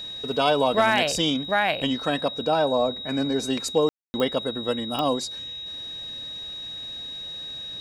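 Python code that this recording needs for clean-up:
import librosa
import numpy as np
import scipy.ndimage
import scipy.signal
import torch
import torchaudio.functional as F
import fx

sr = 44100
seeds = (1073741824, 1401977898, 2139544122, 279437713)

y = fx.fix_declip(x, sr, threshold_db=-10.0)
y = fx.fix_declick_ar(y, sr, threshold=10.0)
y = fx.notch(y, sr, hz=3800.0, q=30.0)
y = fx.fix_ambience(y, sr, seeds[0], print_start_s=5.46, print_end_s=5.96, start_s=3.89, end_s=4.14)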